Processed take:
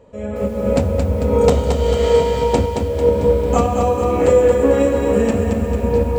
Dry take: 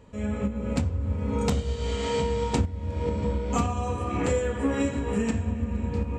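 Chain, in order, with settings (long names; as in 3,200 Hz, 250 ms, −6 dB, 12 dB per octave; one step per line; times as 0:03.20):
parametric band 550 Hz +13 dB 1.1 octaves
automatic gain control gain up to 11 dB
feedback echo at a low word length 223 ms, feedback 55%, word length 7 bits, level −5 dB
level −1.5 dB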